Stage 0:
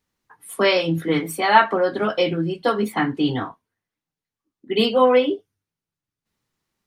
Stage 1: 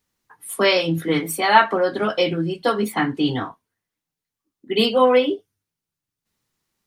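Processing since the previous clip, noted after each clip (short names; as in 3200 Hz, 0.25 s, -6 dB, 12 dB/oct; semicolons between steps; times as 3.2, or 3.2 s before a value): high shelf 4400 Hz +6 dB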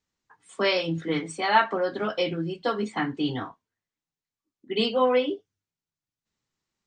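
steep low-pass 8100 Hz 72 dB/oct; gain -6.5 dB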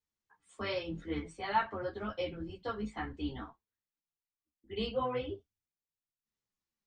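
octaver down 2 oct, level -5 dB; dynamic EQ 7500 Hz, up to -7 dB, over -47 dBFS, Q 0.74; ensemble effect; gain -8.5 dB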